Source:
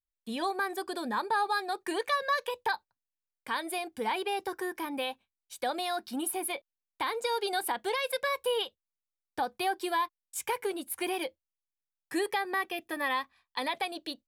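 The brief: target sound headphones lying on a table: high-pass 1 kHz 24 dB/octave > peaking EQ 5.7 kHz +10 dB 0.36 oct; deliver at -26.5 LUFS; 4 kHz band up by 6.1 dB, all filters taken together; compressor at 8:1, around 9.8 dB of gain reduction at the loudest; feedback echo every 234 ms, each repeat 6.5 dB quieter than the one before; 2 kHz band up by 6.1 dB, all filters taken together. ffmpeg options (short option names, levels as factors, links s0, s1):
-af "equalizer=f=2000:t=o:g=6.5,equalizer=f=4000:t=o:g=4,acompressor=threshold=0.0251:ratio=8,highpass=f=1000:w=0.5412,highpass=f=1000:w=1.3066,equalizer=f=5700:t=o:w=0.36:g=10,aecho=1:1:234|468|702|936|1170|1404:0.473|0.222|0.105|0.0491|0.0231|0.0109,volume=3.35"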